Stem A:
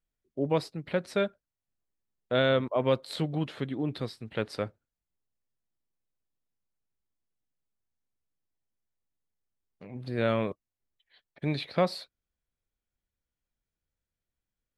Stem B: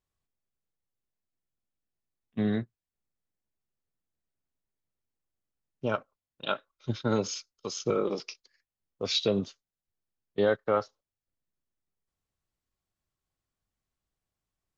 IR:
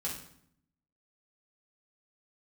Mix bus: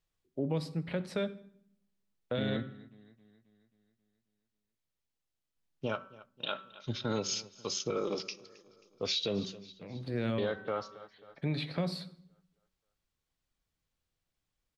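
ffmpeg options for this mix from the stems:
-filter_complex "[0:a]highshelf=frequency=5200:gain=-6.5,acrossover=split=350|3000[link_01][link_02][link_03];[link_02]acompressor=threshold=-34dB:ratio=6[link_04];[link_01][link_04][link_03]amix=inputs=3:normalize=0,volume=-1dB,asplit=3[link_05][link_06][link_07];[link_05]atrim=end=2.57,asetpts=PTS-STARTPTS,afade=type=out:start_time=2.566:duration=0.004:curve=hsin[link_08];[link_06]atrim=start=2.57:end=5.56,asetpts=PTS-STARTPTS,volume=0[link_09];[link_07]atrim=start=5.56,asetpts=PTS-STARTPTS,afade=type=in:duration=0.004:curve=hsin[link_10];[link_08][link_09][link_10]concat=n=3:v=0:a=1,asplit=2[link_11][link_12];[link_12]volume=-12.5dB[link_13];[1:a]equalizer=frequency=3600:width_type=o:width=1.8:gain=6,volume=-2.5dB,asplit=3[link_14][link_15][link_16];[link_15]volume=-21dB[link_17];[link_16]volume=-23.5dB[link_18];[2:a]atrim=start_sample=2205[link_19];[link_13][link_17]amix=inputs=2:normalize=0[link_20];[link_20][link_19]afir=irnorm=-1:irlink=0[link_21];[link_18]aecho=0:1:268|536|804|1072|1340|1608|1876|2144:1|0.54|0.292|0.157|0.085|0.0459|0.0248|0.0134[link_22];[link_11][link_14][link_21][link_22]amix=inputs=4:normalize=0,bandreject=frequency=190.6:width_type=h:width=4,bandreject=frequency=381.2:width_type=h:width=4,bandreject=frequency=571.8:width_type=h:width=4,bandreject=frequency=762.4:width_type=h:width=4,bandreject=frequency=953:width_type=h:width=4,bandreject=frequency=1143.6:width_type=h:width=4,bandreject=frequency=1334.2:width_type=h:width=4,bandreject=frequency=1524.8:width_type=h:width=4,bandreject=frequency=1715.4:width_type=h:width=4,bandreject=frequency=1906:width_type=h:width=4,alimiter=limit=-23dB:level=0:latency=1:release=89"

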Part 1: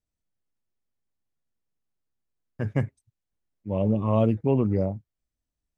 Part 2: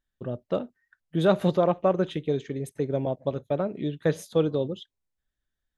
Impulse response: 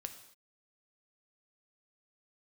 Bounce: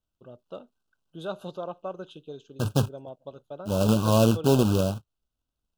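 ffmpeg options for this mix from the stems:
-filter_complex "[0:a]lowpass=2700,highshelf=frequency=2000:gain=8,acrusher=bits=2:mode=log:mix=0:aa=0.000001,volume=1dB[link_01];[1:a]lowshelf=frequency=480:gain=-9.5,volume=-8.5dB[link_02];[link_01][link_02]amix=inputs=2:normalize=0,asuperstop=centerf=2000:order=12:qfactor=2"

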